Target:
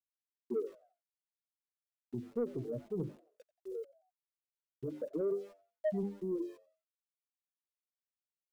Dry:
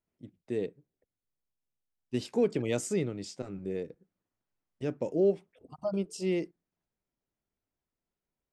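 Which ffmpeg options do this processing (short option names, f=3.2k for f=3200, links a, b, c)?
-filter_complex "[0:a]afftfilt=real='re*gte(hypot(re,im),0.158)':imag='im*gte(hypot(re,im),0.158)':win_size=1024:overlap=0.75,bandreject=f=50:t=h:w=6,bandreject=f=100:t=h:w=6,bandreject=f=150:t=h:w=6,bandreject=f=200:t=h:w=6,bandreject=f=250:t=h:w=6,bandreject=f=300:t=h:w=6,bandreject=f=350:t=h:w=6,bandreject=f=400:t=h:w=6,asubboost=boost=3:cutoff=75,adynamicsmooth=sensitivity=4.5:basefreq=5.5k,alimiter=level_in=5.5dB:limit=-24dB:level=0:latency=1:release=449,volume=-5.5dB,aeval=exprs='val(0)*gte(abs(val(0)),0.00106)':c=same,flanger=delay=2.7:depth=7.3:regen=22:speed=0.25:shape=triangular,asoftclip=type=tanh:threshold=-32dB,asplit=2[a][b];[b]asplit=3[c][d][e];[c]adelay=89,afreqshift=96,volume=-22.5dB[f];[d]adelay=178,afreqshift=192,volume=-30.2dB[g];[e]adelay=267,afreqshift=288,volume=-38dB[h];[f][g][h]amix=inputs=3:normalize=0[i];[a][i]amix=inputs=2:normalize=0,volume=6.5dB"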